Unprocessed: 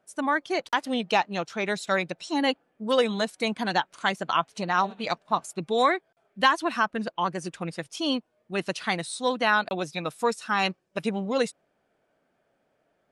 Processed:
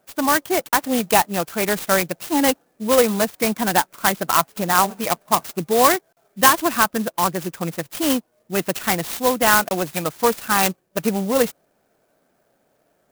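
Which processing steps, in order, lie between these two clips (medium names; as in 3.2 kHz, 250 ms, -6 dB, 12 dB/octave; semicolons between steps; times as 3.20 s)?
sampling jitter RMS 0.071 ms; trim +7 dB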